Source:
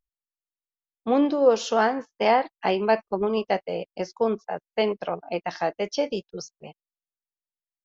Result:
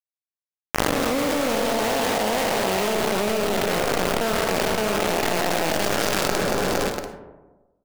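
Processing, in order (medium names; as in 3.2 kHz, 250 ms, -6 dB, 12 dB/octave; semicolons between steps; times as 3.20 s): spectral blur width 890 ms; in parallel at +1 dB: gain riding within 5 dB 2 s; on the sum: bit crusher 4-bit; feedback delay 230 ms, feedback 37%, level -17 dB; algorithmic reverb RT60 1.2 s, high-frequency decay 0.35×, pre-delay 15 ms, DRR 6 dB; level flattener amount 100%; trim -4 dB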